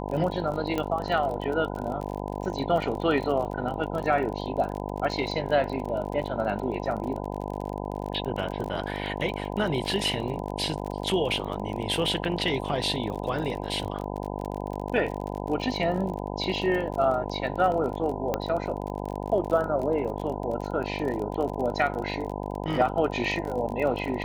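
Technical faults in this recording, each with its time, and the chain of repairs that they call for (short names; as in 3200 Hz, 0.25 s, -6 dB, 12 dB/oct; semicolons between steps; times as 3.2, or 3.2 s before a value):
buzz 50 Hz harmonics 20 -33 dBFS
crackle 34/s -32 dBFS
0.78 pop -15 dBFS
18.34 pop -12 dBFS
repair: de-click; de-hum 50 Hz, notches 20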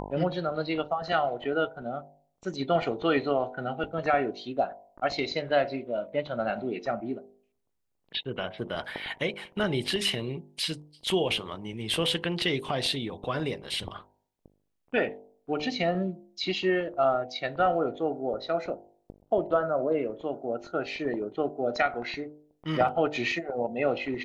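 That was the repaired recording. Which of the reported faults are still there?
0.78 pop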